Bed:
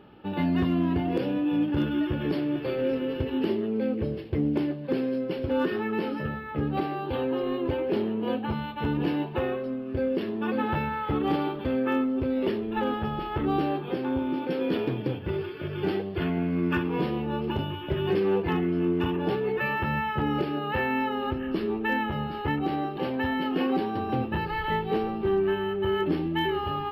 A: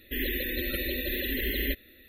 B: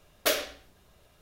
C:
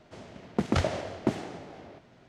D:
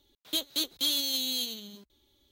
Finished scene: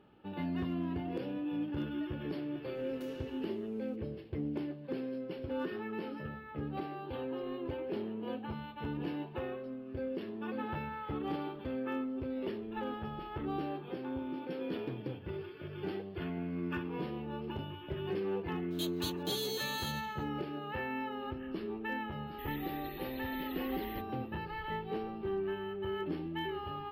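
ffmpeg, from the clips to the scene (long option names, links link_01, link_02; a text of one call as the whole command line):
ffmpeg -i bed.wav -i cue0.wav -i cue1.wav -i cue2.wav -i cue3.wav -filter_complex "[0:a]volume=-11dB[link_01];[2:a]acompressor=threshold=-46dB:ratio=6:attack=3.2:release=140:knee=1:detection=peak,atrim=end=1.21,asetpts=PTS-STARTPTS,volume=-11dB,afade=type=in:duration=0.004:curve=hsin,afade=type=out:start_time=1.206:duration=0.004:curve=hsin,adelay=2750[link_02];[4:a]atrim=end=2.31,asetpts=PTS-STARTPTS,volume=-10.5dB,afade=type=in:duration=0.004:curve=hsin,afade=type=out:start_time=2.306:duration=0.004:curve=hsin,adelay=18460[link_03];[1:a]atrim=end=2.08,asetpts=PTS-STARTPTS,volume=-17.5dB,afade=type=in:duration=0.004:curve=hsin,afade=type=out:start_time=2.076:duration=0.004:curve=hsin,adelay=22270[link_04];[link_01][link_02][link_03][link_04]amix=inputs=4:normalize=0" out.wav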